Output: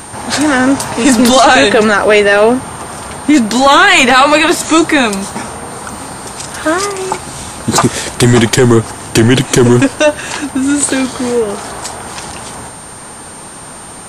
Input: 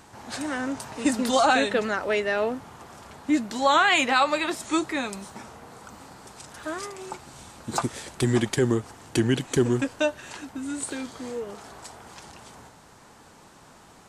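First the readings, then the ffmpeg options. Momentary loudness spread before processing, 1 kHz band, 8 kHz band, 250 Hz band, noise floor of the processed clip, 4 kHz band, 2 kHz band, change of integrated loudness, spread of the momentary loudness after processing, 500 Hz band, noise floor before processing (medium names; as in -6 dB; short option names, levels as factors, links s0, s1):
24 LU, +14.5 dB, +19.0 dB, +16.5 dB, -30 dBFS, +16.5 dB, +16.0 dB, +15.5 dB, 18 LU, +16.0 dB, -52 dBFS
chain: -af "aeval=exprs='val(0)+0.00282*sin(2*PI*9000*n/s)':c=same,apsyclip=11.9,volume=0.841"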